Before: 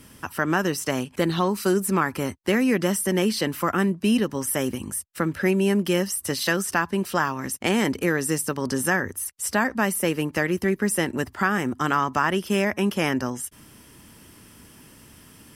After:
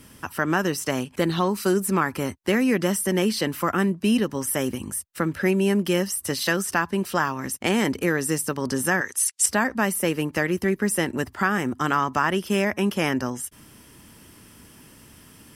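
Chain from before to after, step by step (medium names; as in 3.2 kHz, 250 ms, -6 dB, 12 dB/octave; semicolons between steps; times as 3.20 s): 9.01–9.46 s: frequency weighting ITU-R 468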